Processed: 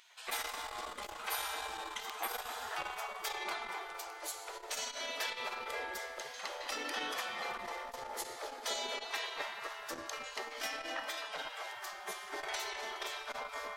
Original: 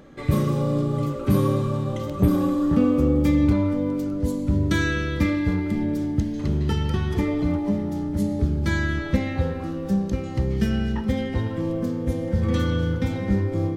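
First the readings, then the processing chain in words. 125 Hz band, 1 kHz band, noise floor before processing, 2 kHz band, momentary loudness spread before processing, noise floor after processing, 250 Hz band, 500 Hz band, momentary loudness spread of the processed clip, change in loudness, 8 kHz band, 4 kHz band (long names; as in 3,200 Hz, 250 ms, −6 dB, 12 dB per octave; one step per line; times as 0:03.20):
below −40 dB, −4.5 dB, −31 dBFS, −6.5 dB, 6 LU, −48 dBFS, −35.5 dB, −17.0 dB, 6 LU, −16.0 dB, +2.0 dB, −0.5 dB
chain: on a send: feedback echo with a low-pass in the loop 260 ms, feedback 57%, low-pass 1,700 Hz, level −6 dB
on the sum: gate on every frequency bin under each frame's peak −25 dB weak
bass and treble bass −10 dB, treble 0 dB
saturating transformer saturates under 1,600 Hz
level +3.5 dB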